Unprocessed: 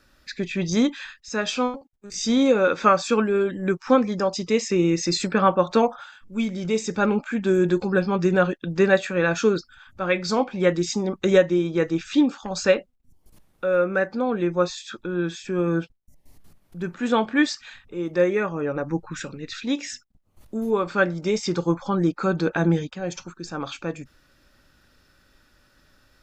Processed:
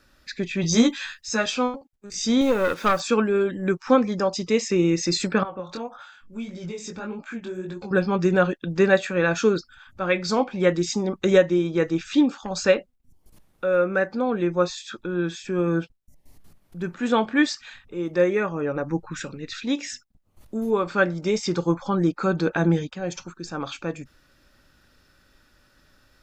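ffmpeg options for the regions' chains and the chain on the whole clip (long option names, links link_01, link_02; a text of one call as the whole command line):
ffmpeg -i in.wav -filter_complex "[0:a]asettb=1/sr,asplit=3[link_01][link_02][link_03];[link_01]atrim=end=0.624[link_04];[link_02]atrim=start=0.62:end=1.46,asetpts=PTS-STARTPTS,afade=type=in:duration=0.004:curve=qsin,afade=type=out:start_time=0.836:duration=0.004:curve=qsin,aemphasis=mode=production:type=cd,asplit=2[link_05][link_06];[link_06]adelay=13,volume=-2dB[link_07];[link_05][link_07]amix=inputs=2:normalize=0,atrim=end_sample=37044[link_08];[link_03]atrim=start=1.456[link_09];[link_04][link_08]acrossfade=duration=0.004:curve1=hsin:curve2=qsin[link_10];[link_10][link_09]acrossfade=duration=0.004:curve1=qsin:curve2=hsin,asettb=1/sr,asplit=3[link_11][link_12][link_13];[link_11]atrim=end=2.414[link_14];[link_12]atrim=start=2.41:end=3,asetpts=PTS-STARTPTS,afade=type=in:duration=0.004:curve=qsin,afade=type=out:start_time=0.586:duration=0.004:curve=qsin,highpass=75,aeval=exprs='(tanh(4.47*val(0)+0.55)-tanh(0.55))/4.47':channel_layout=same,acrusher=bits=6:mix=0:aa=0.5[link_15];[link_13]atrim=start=2.996[link_16];[link_14][link_15]acrossfade=duration=0.004:curve1=hsin:curve2=qsin[link_17];[link_17][link_16]acrossfade=duration=0.004:curve1=qsin:curve2=hsin,asettb=1/sr,asplit=3[link_18][link_19][link_20];[link_18]atrim=end=5.434[link_21];[link_19]atrim=start=5.43:end=7.91,asetpts=PTS-STARTPTS,afade=type=in:duration=0.004:curve=qsin,afade=type=out:start_time=2.476:duration=0.004:curve=qsin,acompressor=threshold=-28dB:ratio=4:attack=3.2:release=140:knee=1:detection=peak,flanger=delay=17.5:depth=6.1:speed=1.7[link_22];[link_20]atrim=start=7.906[link_23];[link_21][link_22]acrossfade=duration=0.004:curve1=hsin:curve2=qsin[link_24];[link_24][link_23]acrossfade=duration=0.004:curve1=qsin:curve2=hsin" out.wav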